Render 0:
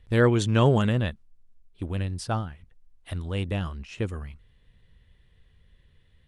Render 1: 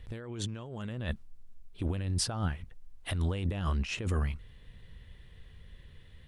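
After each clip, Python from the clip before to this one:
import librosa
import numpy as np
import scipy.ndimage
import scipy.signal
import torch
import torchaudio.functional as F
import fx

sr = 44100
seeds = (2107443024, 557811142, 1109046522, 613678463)

y = fx.over_compress(x, sr, threshold_db=-34.0, ratio=-1.0)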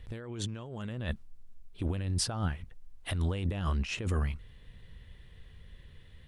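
y = x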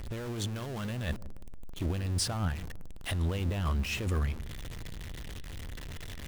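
y = x + 0.5 * 10.0 ** (-35.0 / 20.0) * np.sign(x)
y = fx.echo_wet_lowpass(y, sr, ms=160, feedback_pct=32, hz=550.0, wet_db=-14)
y = y * 10.0 ** (-1.5 / 20.0)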